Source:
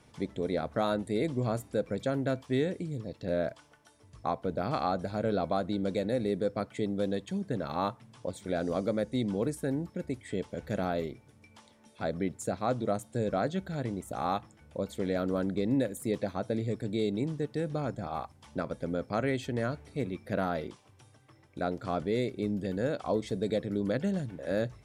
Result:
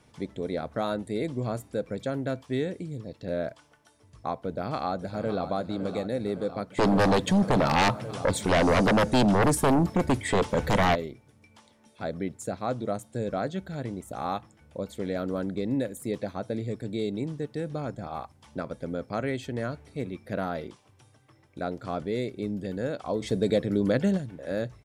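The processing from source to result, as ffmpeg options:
-filter_complex "[0:a]asplit=2[s0][s1];[s1]afade=t=in:st=4.46:d=0.01,afade=t=out:st=5.45:d=0.01,aecho=0:1:560|1120|1680|2240|2800|3360|3920|4480:0.298538|0.19405|0.126132|0.0819861|0.0532909|0.0346391|0.0225154|0.014635[s2];[s0][s2]amix=inputs=2:normalize=0,asplit=3[s3][s4][s5];[s3]afade=t=out:st=6.77:d=0.02[s6];[s4]aeval=exprs='0.133*sin(PI/2*3.98*val(0)/0.133)':c=same,afade=t=in:st=6.77:d=0.02,afade=t=out:st=10.94:d=0.02[s7];[s5]afade=t=in:st=10.94:d=0.02[s8];[s6][s7][s8]amix=inputs=3:normalize=0,asplit=3[s9][s10][s11];[s9]afade=t=out:st=23.2:d=0.02[s12];[s10]acontrast=55,afade=t=in:st=23.2:d=0.02,afade=t=out:st=24.16:d=0.02[s13];[s11]afade=t=in:st=24.16:d=0.02[s14];[s12][s13][s14]amix=inputs=3:normalize=0"

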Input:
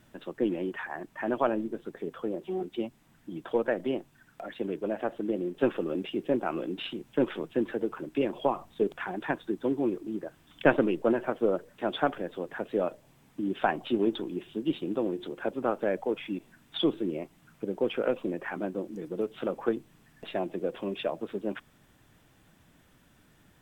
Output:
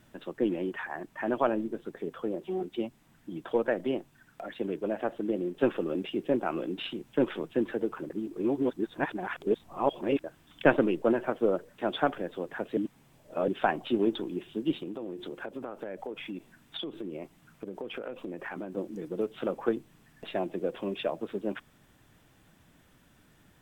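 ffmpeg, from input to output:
-filter_complex "[0:a]asettb=1/sr,asplit=3[s0][s1][s2];[s0]atrim=end=14.814[s3];[s1]atrim=start=14.81:end=18.77,asetpts=PTS-STARTPTS,afade=t=in:d=0.004:c=qsin,afade=t=out:st=3.956:d=0.004:c=qsin,acompressor=threshold=0.0224:ratio=12:attack=3.2:release=140:knee=1:detection=peak[s4];[s2]atrim=start=18.766[s5];[s3][s4]acrossfade=d=0.004:c1=hsin:c2=qsin[s6];[s6][s5]acrossfade=d=0.004:c1=qsin:c2=hsin,asplit=5[s7][s8][s9][s10][s11];[s7]atrim=end=8.102[s12];[s8]atrim=start=8.098:end=10.242,asetpts=PTS-STARTPTS,areverse[s13];[s9]atrim=start=10.238:end=12.772[s14];[s10]atrim=start=12.768:end=13.482,asetpts=PTS-STARTPTS,areverse[s15];[s11]atrim=start=13.478[s16];[s12][s13]acrossfade=d=0.004:c1=hsin:c2=hsin[s17];[s17][s14]acrossfade=d=0.004:c1=hsin:c2=hsin[s18];[s18][s15]acrossfade=d=0.004:c1=hsin:c2=hsin[s19];[s19][s16]acrossfade=d=0.004:c1=hsin:c2=hsin"

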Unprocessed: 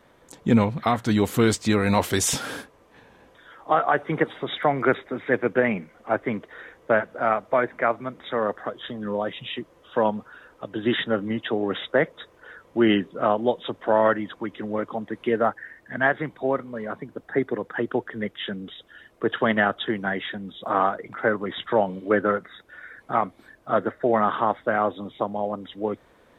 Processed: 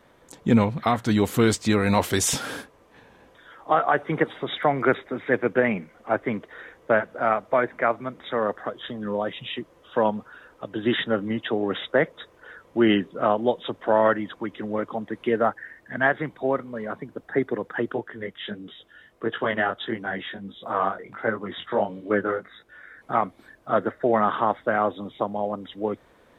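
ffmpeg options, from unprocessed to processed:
-filter_complex "[0:a]asplit=3[s0][s1][s2];[s0]afade=t=out:st=17.93:d=0.02[s3];[s1]flanger=delay=17.5:depth=4.6:speed=1.5,afade=t=in:st=17.93:d=0.02,afade=t=out:st=23.01:d=0.02[s4];[s2]afade=t=in:st=23.01:d=0.02[s5];[s3][s4][s5]amix=inputs=3:normalize=0"

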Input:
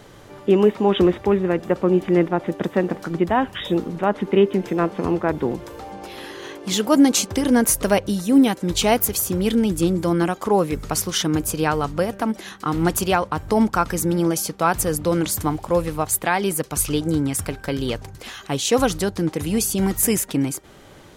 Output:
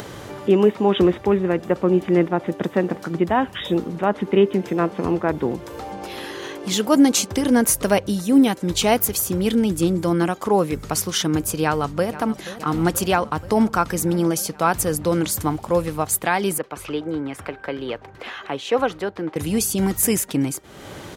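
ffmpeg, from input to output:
-filter_complex "[0:a]asplit=2[s0][s1];[s1]afade=t=in:st=11.63:d=0.01,afade=t=out:st=12.35:d=0.01,aecho=0:1:480|960|1440|1920|2400|2880|3360|3840|4320|4800:0.16788|0.12591|0.0944327|0.0708245|0.0531184|0.0398388|0.0298791|0.0224093|0.016807|0.0126052[s2];[s0][s2]amix=inputs=2:normalize=0,asettb=1/sr,asplit=3[s3][s4][s5];[s3]atrim=end=16.584[s6];[s4]atrim=start=16.58:end=19.36,asetpts=PTS-STARTPTS,afade=t=in:d=0.004:c=qsin,afade=t=out:st=2.776:d=0.004:c=qsin,acrossover=split=310 3100:gain=0.224 1 0.0891[s7][s8][s9];[s7][s8][s9]amix=inputs=3:normalize=0[s10];[s5]atrim=start=19.356[s11];[s6][s10]acrossfade=d=0.004:c1=hsin:c2=qsin[s12];[s12][s11]acrossfade=d=0.004:c1=qsin:c2=hsin,highpass=53,acompressor=mode=upward:threshold=0.0501:ratio=2.5"

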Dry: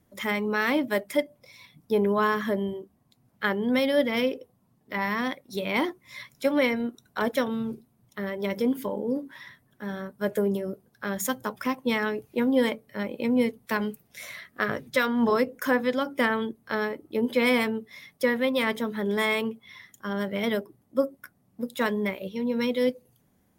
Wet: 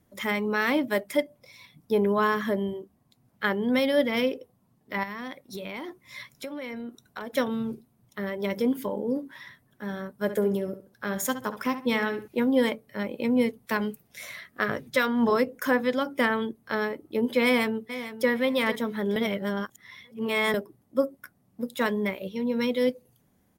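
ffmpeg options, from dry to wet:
-filter_complex "[0:a]asettb=1/sr,asplit=3[s0][s1][s2];[s0]atrim=end=5.034[s3];[s1]atrim=start=5.03:end=7.35,asetpts=PTS-STARTPTS,afade=t=in:d=0.004:c=qsin,afade=t=out:st=2.316:d=0.004:c=qsin,acompressor=threshold=0.0251:ratio=12:attack=3.2:release=140:knee=1:detection=peak[s4];[s2]atrim=start=7.346[s5];[s3][s4]acrossfade=d=0.004:c1=hsin:c2=qsin[s6];[s6][s5]acrossfade=d=0.004:c1=qsin:c2=hsin,asettb=1/sr,asplit=3[s7][s8][s9];[s7]atrim=end=10.194[s10];[s8]atrim=start=10.19:end=12.28,asetpts=PTS-STARTPTS,afade=t=in:d=0.004:c=qsin,afade=t=out:st=2.086:d=0.004:c=qsin,asplit=2[s11][s12];[s12]adelay=67,lowpass=f=4100:p=1,volume=0.282,asplit=2[s13][s14];[s14]adelay=67,lowpass=f=4100:p=1,volume=0.28,asplit=2[s15][s16];[s16]adelay=67,lowpass=f=4100:p=1,volume=0.28[s17];[s11][s13][s15][s17]amix=inputs=4:normalize=0,atrim=end_sample=92169[s18];[s9]atrim=start=12.276[s19];[s10][s18]acrossfade=d=0.004:c1=hsin:c2=qsin[s20];[s20][s19]acrossfade=d=0.004:c1=qsin:c2=hsin,asplit=2[s21][s22];[s22]afade=t=in:st=17.44:d=0.01,afade=t=out:st=18.3:d=0.01,aecho=0:1:450|900|1350:0.237137|0.0592843|0.0148211[s23];[s21][s23]amix=inputs=2:normalize=0,asplit=3[s24][s25][s26];[s24]atrim=end=19.162[s27];[s25]atrim=start=19.158:end=20.542,asetpts=PTS-STARTPTS,areverse[s28];[s26]atrim=start=20.538[s29];[s27][s28]acrossfade=d=0.004:c1=hsin:c2=hsin[s30];[s30][s29]acrossfade=d=0.004:c1=hsin:c2=hsin"

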